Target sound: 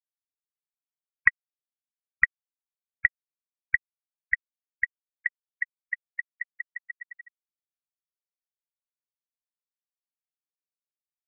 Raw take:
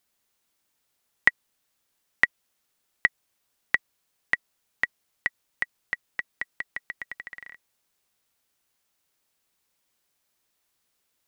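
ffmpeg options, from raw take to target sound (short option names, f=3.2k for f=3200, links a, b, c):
-af "asubboost=boost=3:cutoff=160,afftfilt=real='re*gte(hypot(re,im),0.126)':imag='im*gte(hypot(re,im),0.126)':win_size=1024:overlap=0.75"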